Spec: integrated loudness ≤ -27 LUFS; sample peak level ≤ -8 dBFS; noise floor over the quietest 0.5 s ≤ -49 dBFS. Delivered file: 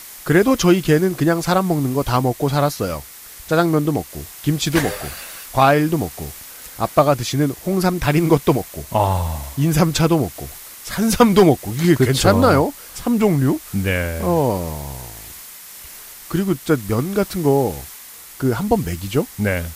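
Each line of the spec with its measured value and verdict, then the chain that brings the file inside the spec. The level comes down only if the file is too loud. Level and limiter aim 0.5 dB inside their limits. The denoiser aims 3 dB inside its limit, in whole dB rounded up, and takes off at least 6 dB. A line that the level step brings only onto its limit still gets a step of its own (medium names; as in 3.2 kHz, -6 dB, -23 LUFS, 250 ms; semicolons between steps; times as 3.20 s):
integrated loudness -18.5 LUFS: fail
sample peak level -1.5 dBFS: fail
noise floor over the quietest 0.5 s -39 dBFS: fail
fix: noise reduction 6 dB, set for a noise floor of -39 dBFS; trim -9 dB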